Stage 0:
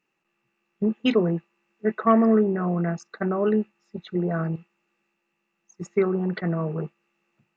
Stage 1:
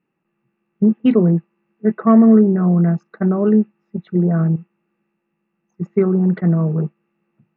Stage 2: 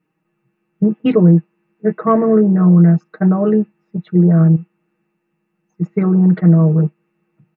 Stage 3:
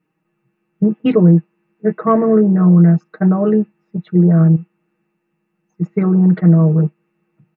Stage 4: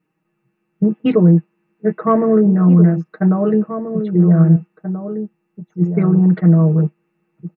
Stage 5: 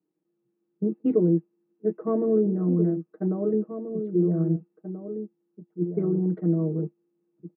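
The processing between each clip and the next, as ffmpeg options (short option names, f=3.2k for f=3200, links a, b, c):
-af "lowpass=2k,equalizer=f=170:w=0.64:g=11.5"
-af "aecho=1:1:6.4:0.84,volume=1dB"
-af anull
-filter_complex "[0:a]asplit=2[a][b];[b]adelay=1633,volume=-9dB,highshelf=f=4k:g=-36.7[c];[a][c]amix=inputs=2:normalize=0,volume=-1dB"
-af "acrusher=bits=11:mix=0:aa=0.000001,bandpass=f=340:t=q:w=2.5:csg=0,volume=-3dB"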